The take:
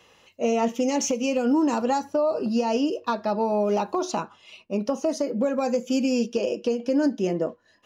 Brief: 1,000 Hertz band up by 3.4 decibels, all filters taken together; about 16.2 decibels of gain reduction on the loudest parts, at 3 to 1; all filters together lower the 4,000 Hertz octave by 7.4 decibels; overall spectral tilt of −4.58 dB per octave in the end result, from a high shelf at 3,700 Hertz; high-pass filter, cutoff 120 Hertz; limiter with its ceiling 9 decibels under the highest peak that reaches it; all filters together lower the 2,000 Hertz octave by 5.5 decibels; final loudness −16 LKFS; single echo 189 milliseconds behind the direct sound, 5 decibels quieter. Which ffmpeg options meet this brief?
ffmpeg -i in.wav -af "highpass=120,equalizer=frequency=1000:width_type=o:gain=6,equalizer=frequency=2000:width_type=o:gain=-7,highshelf=frequency=3700:gain=-5,equalizer=frequency=4000:width_type=o:gain=-5,acompressor=threshold=-41dB:ratio=3,alimiter=level_in=9.5dB:limit=-24dB:level=0:latency=1,volume=-9.5dB,aecho=1:1:189:0.562,volume=25.5dB" out.wav

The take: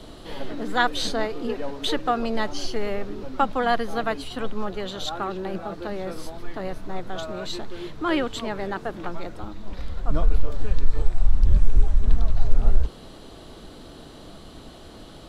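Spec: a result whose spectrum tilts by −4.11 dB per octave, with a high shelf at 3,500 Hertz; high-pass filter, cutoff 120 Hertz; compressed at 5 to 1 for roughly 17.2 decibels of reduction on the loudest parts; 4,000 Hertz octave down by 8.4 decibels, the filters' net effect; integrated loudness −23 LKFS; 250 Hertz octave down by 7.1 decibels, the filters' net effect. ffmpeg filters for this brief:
ffmpeg -i in.wav -af "highpass=120,equalizer=frequency=250:width_type=o:gain=-9,highshelf=frequency=3500:gain=-7.5,equalizer=frequency=4000:width_type=o:gain=-5.5,acompressor=threshold=-38dB:ratio=5,volume=20dB" out.wav

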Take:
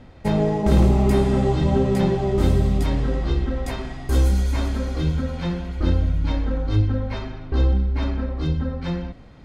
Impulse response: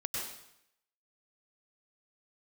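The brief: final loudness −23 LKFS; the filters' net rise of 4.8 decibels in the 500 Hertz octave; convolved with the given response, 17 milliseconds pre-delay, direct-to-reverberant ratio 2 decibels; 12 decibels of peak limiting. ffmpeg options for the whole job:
-filter_complex "[0:a]equalizer=frequency=500:width_type=o:gain=6.5,alimiter=limit=-15dB:level=0:latency=1,asplit=2[link_01][link_02];[1:a]atrim=start_sample=2205,adelay=17[link_03];[link_02][link_03]afir=irnorm=-1:irlink=0,volume=-5dB[link_04];[link_01][link_04]amix=inputs=2:normalize=0"

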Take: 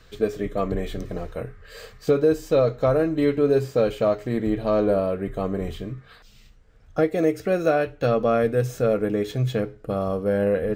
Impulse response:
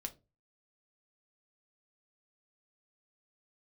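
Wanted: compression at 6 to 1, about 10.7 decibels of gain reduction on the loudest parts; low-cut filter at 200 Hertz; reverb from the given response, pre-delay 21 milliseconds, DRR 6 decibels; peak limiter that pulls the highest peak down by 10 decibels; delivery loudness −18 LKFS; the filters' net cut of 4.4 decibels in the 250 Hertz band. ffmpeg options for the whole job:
-filter_complex "[0:a]highpass=200,equalizer=frequency=250:width_type=o:gain=-4,acompressor=threshold=-28dB:ratio=6,alimiter=level_in=2dB:limit=-24dB:level=0:latency=1,volume=-2dB,asplit=2[link_01][link_02];[1:a]atrim=start_sample=2205,adelay=21[link_03];[link_02][link_03]afir=irnorm=-1:irlink=0,volume=-3.5dB[link_04];[link_01][link_04]amix=inputs=2:normalize=0,volume=17.5dB"

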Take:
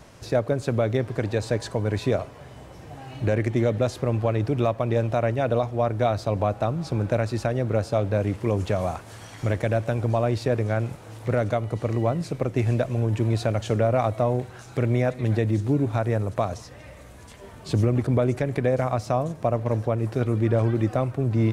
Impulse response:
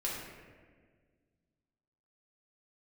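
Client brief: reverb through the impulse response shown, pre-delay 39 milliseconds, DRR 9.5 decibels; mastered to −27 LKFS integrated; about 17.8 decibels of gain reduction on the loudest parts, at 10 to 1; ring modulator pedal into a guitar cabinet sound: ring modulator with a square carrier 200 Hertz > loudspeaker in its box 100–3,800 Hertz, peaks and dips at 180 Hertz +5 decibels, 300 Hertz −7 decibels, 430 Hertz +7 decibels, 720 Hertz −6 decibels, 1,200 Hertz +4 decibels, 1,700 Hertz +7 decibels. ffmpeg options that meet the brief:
-filter_complex "[0:a]acompressor=threshold=-36dB:ratio=10,asplit=2[link_01][link_02];[1:a]atrim=start_sample=2205,adelay=39[link_03];[link_02][link_03]afir=irnorm=-1:irlink=0,volume=-13.5dB[link_04];[link_01][link_04]amix=inputs=2:normalize=0,aeval=exprs='val(0)*sgn(sin(2*PI*200*n/s))':channel_layout=same,highpass=100,equalizer=frequency=180:width_type=q:width=4:gain=5,equalizer=frequency=300:width_type=q:width=4:gain=-7,equalizer=frequency=430:width_type=q:width=4:gain=7,equalizer=frequency=720:width_type=q:width=4:gain=-6,equalizer=frequency=1200:width_type=q:width=4:gain=4,equalizer=frequency=1700:width_type=q:width=4:gain=7,lowpass=frequency=3800:width=0.5412,lowpass=frequency=3800:width=1.3066,volume=13dB"

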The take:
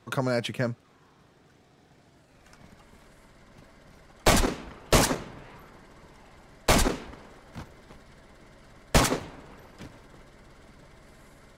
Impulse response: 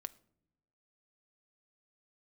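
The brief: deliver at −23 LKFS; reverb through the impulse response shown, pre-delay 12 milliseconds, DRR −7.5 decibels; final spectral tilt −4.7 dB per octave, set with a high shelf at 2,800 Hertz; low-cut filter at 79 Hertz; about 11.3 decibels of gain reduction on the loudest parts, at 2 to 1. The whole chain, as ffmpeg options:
-filter_complex "[0:a]highpass=79,highshelf=frequency=2800:gain=-7,acompressor=threshold=-39dB:ratio=2,asplit=2[link_01][link_02];[1:a]atrim=start_sample=2205,adelay=12[link_03];[link_02][link_03]afir=irnorm=-1:irlink=0,volume=11dB[link_04];[link_01][link_04]amix=inputs=2:normalize=0,volume=8.5dB"

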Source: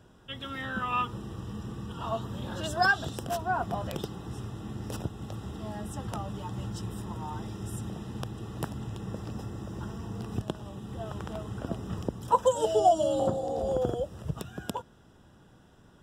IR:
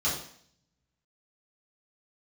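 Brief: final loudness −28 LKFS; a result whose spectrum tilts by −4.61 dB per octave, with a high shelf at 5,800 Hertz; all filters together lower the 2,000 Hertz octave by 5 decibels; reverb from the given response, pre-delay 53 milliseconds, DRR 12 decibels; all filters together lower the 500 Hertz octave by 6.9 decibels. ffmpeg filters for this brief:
-filter_complex "[0:a]equalizer=frequency=500:width_type=o:gain=-8.5,equalizer=frequency=2000:width_type=o:gain=-7.5,highshelf=frequency=5800:gain=9,asplit=2[link_01][link_02];[1:a]atrim=start_sample=2205,adelay=53[link_03];[link_02][link_03]afir=irnorm=-1:irlink=0,volume=-21.5dB[link_04];[link_01][link_04]amix=inputs=2:normalize=0,volume=7.5dB"

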